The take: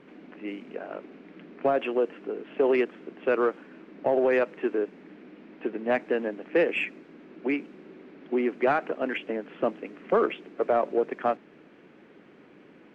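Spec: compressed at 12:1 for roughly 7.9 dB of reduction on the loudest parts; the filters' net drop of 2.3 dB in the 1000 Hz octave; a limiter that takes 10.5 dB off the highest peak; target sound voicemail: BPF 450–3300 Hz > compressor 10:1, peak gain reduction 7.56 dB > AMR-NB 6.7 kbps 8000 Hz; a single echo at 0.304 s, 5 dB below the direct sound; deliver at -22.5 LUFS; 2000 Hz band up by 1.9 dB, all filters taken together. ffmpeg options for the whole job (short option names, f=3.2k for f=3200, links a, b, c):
-af "equalizer=f=1k:t=o:g=-4,equalizer=f=2k:t=o:g=4.5,acompressor=threshold=-27dB:ratio=12,alimiter=level_in=4dB:limit=-24dB:level=0:latency=1,volume=-4dB,highpass=450,lowpass=3.3k,aecho=1:1:304:0.562,acompressor=threshold=-39dB:ratio=10,volume=23.5dB" -ar 8000 -c:a libopencore_amrnb -b:a 6700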